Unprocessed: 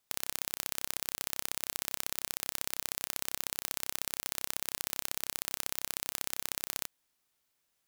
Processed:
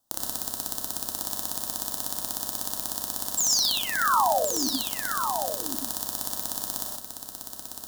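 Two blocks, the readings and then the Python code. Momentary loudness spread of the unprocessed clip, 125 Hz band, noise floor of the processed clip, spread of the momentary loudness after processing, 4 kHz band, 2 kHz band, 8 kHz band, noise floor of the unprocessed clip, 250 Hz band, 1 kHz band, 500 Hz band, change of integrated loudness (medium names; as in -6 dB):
1 LU, +6.0 dB, -43 dBFS, 9 LU, +9.5 dB, +8.0 dB, +9.0 dB, -79 dBFS, +15.0 dB, +18.5 dB, +16.0 dB, +8.5 dB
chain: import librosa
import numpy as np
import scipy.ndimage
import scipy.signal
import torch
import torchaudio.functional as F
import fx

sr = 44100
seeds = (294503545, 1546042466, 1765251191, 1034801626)

y = fx.dereverb_blind(x, sr, rt60_s=1.8)
y = fx.curve_eq(y, sr, hz=(150.0, 330.0, 1300.0, 3000.0), db=(0, 14, -5, -2))
y = fx.spec_paint(y, sr, seeds[0], shape='fall', start_s=3.37, length_s=1.31, low_hz=240.0, high_hz=7800.0, level_db=-31.0)
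y = fx.fixed_phaser(y, sr, hz=960.0, stages=4)
y = y + 10.0 ** (-7.0 / 20.0) * np.pad(y, (int(1077 * sr / 1000.0), 0))[:len(y)]
y = fx.rev_gated(y, sr, seeds[1], gate_ms=150, shape='rising', drr_db=0.5)
y = y * librosa.db_to_amplitude(7.5)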